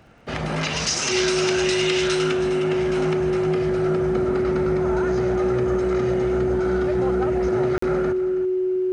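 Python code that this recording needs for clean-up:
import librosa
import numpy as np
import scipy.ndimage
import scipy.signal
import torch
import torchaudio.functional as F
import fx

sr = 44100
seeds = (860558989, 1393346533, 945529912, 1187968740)

y = fx.fix_declick_ar(x, sr, threshold=6.5)
y = fx.notch(y, sr, hz=370.0, q=30.0)
y = fx.fix_interpolate(y, sr, at_s=(7.78,), length_ms=44.0)
y = fx.fix_echo_inverse(y, sr, delay_ms=324, level_db=-13.5)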